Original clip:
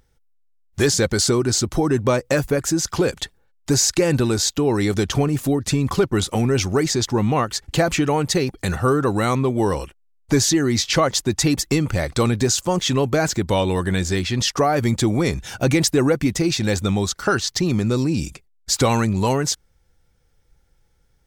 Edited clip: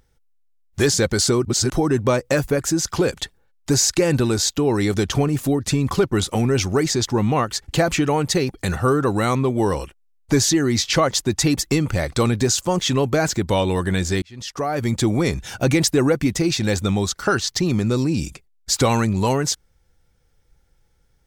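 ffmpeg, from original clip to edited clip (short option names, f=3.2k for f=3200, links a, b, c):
-filter_complex "[0:a]asplit=4[a][b][c][d];[a]atrim=end=1.452[e];[b]atrim=start=1.448:end=1.702,asetpts=PTS-STARTPTS,areverse[f];[c]atrim=start=1.698:end=14.22,asetpts=PTS-STARTPTS,afade=t=out:st=12.518:d=0.004:c=hsin[g];[d]atrim=start=14.22,asetpts=PTS-STARTPTS,afade=t=in:d=0.84[h];[e][f]acrossfade=d=0.004:c1=hsin:c2=hsin[i];[g][h]concat=n=2:v=0:a=1[j];[i][j]acrossfade=d=0.004:c1=hsin:c2=hsin"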